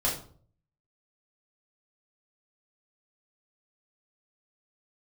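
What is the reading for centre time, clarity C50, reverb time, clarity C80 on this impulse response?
30 ms, 6.5 dB, 0.50 s, 11.5 dB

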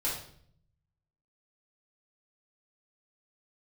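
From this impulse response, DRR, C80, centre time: −8.0 dB, 8.0 dB, 39 ms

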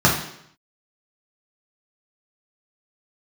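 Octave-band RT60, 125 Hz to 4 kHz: 0.75, 0.75, 0.70, 0.70, 0.70, 0.70 seconds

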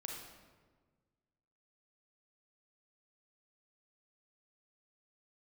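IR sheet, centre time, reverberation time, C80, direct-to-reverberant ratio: 62 ms, 1.5 s, 4.0 dB, −0.5 dB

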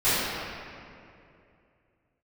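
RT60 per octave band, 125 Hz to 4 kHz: 3.1, 2.9, 2.8, 2.3, 2.2, 1.6 seconds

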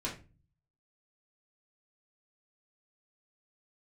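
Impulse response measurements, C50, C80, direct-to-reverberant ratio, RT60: 9.0 dB, 15.0 dB, −7.0 dB, 0.30 s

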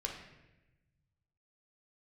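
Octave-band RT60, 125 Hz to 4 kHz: 2.2, 1.5, 1.1, 0.90, 1.1, 0.80 seconds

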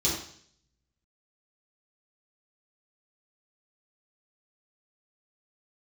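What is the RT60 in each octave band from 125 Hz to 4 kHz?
0.90, 0.65, 0.60, 0.55, 0.60, 0.70 seconds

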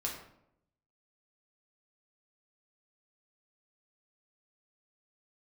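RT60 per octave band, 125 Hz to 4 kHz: 1.0, 0.90, 0.80, 0.70, 0.55, 0.45 seconds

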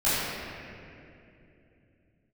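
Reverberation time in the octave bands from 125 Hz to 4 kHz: 4.3, 4.0, 3.3, 2.3, 2.5, 1.7 seconds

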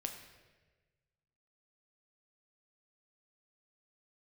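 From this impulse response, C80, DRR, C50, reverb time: 9.0 dB, 4.0 dB, 7.5 dB, 1.3 s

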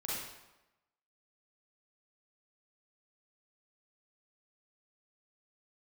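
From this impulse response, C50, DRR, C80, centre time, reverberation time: −3.0 dB, −7.5 dB, 1.5 dB, 84 ms, 1.0 s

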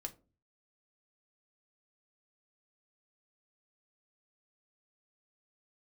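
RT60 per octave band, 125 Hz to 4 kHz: 0.65, 0.55, 0.40, 0.30, 0.20, 0.20 seconds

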